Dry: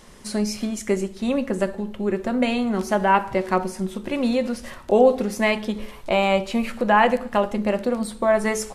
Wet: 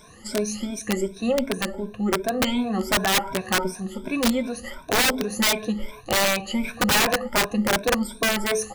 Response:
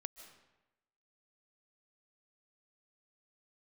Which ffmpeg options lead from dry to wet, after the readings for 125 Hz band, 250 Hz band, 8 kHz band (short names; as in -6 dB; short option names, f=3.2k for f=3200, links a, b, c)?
-1.0 dB, -2.0 dB, +9.0 dB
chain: -af "afftfilt=real='re*pow(10,22/40*sin(2*PI*(1.6*log(max(b,1)*sr/1024/100)/log(2)-(2.7)*(pts-256)/sr)))':imag='im*pow(10,22/40*sin(2*PI*(1.6*log(max(b,1)*sr/1024/100)/log(2)-(2.7)*(pts-256)/sr)))':win_size=1024:overlap=0.75,aeval=exprs='(mod(2.82*val(0)+1,2)-1)/2.82':c=same,volume=-5dB"